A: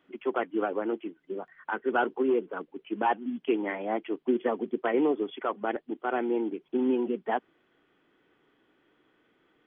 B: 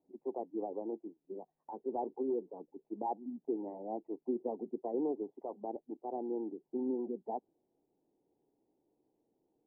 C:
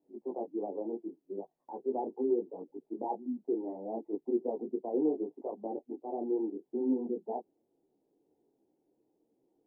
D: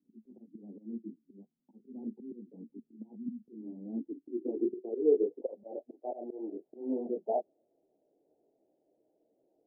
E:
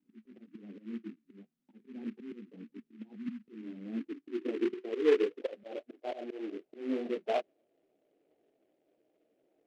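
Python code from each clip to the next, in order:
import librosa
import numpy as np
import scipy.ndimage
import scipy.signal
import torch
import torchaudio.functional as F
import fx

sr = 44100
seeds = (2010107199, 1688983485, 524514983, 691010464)

y1 = scipy.signal.sosfilt(scipy.signal.ellip(4, 1.0, 40, 870.0, 'lowpass', fs=sr, output='sos'), x)
y1 = F.gain(torch.from_numpy(y1), -9.0).numpy()
y2 = fx.peak_eq(y1, sr, hz=350.0, db=8.0, octaves=2.6)
y2 = fx.detune_double(y2, sr, cents=25)
y3 = fx.auto_swell(y2, sr, attack_ms=217.0)
y3 = fx.filter_sweep_lowpass(y3, sr, from_hz=220.0, to_hz=630.0, start_s=3.7, end_s=5.83, q=7.3)
y3 = F.gain(torch.from_numpy(y3), -4.0).numpy()
y4 = fx.noise_mod_delay(y3, sr, seeds[0], noise_hz=1900.0, depth_ms=0.047)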